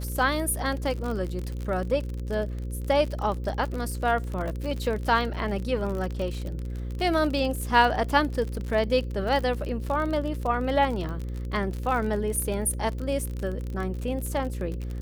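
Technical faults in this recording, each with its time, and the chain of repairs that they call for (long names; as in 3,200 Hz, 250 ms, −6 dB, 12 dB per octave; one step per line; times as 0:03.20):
mains buzz 60 Hz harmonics 9 −32 dBFS
surface crackle 39 per second −30 dBFS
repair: click removal
hum removal 60 Hz, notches 9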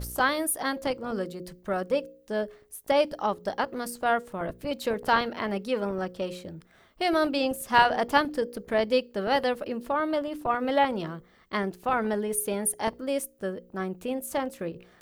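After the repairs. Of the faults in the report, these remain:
none of them is left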